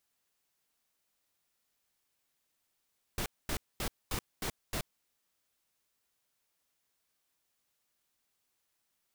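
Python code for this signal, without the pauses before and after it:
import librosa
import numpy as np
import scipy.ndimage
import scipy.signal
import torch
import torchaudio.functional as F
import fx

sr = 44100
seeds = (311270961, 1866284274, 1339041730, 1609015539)

y = fx.noise_burst(sr, seeds[0], colour='pink', on_s=0.08, off_s=0.23, bursts=6, level_db=-34.5)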